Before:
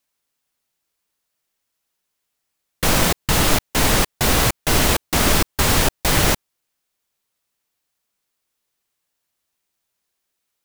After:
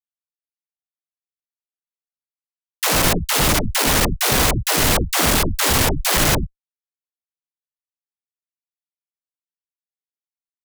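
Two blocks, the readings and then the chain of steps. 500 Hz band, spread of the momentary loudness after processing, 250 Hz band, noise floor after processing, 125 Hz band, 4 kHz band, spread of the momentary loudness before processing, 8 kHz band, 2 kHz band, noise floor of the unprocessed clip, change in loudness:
0.0 dB, 2 LU, −0.5 dB, below −85 dBFS, −0.5 dB, +1.0 dB, 1 LU, +1.5 dB, +1.0 dB, −77 dBFS, +1.0 dB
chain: fuzz pedal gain 28 dB, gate −35 dBFS
all-pass dispersion lows, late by 121 ms, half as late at 340 Hz
level −1 dB

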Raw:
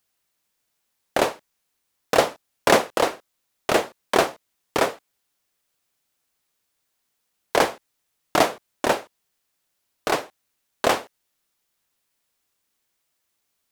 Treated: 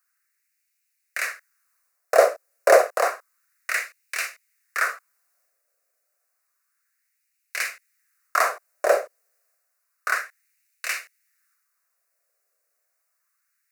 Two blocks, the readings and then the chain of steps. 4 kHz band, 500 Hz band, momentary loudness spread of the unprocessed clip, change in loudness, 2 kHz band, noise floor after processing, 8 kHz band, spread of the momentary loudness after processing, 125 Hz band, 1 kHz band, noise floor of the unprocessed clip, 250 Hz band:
−8.5 dB, +0.5 dB, 8 LU, −0.5 dB, +2.0 dB, −75 dBFS, −1.0 dB, 17 LU, below −30 dB, −2.5 dB, −76 dBFS, −18.0 dB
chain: phaser with its sweep stopped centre 890 Hz, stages 6
transient designer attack −3 dB, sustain +4 dB
auto-filter high-pass sine 0.3 Hz 560–2,500 Hz
level +1.5 dB

